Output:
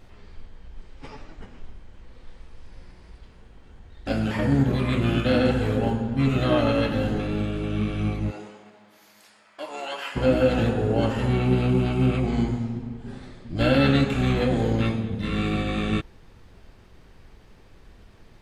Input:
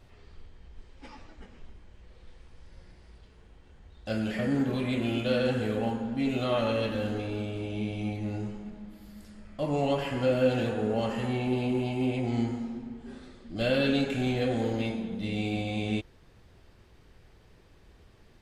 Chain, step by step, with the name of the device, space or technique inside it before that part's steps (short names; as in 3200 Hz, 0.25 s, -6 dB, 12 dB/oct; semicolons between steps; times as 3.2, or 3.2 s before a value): octave pedal (harmoniser -12 st -1 dB); 8.3–10.15 HPF 440 Hz -> 1200 Hz 12 dB/oct; gain +4 dB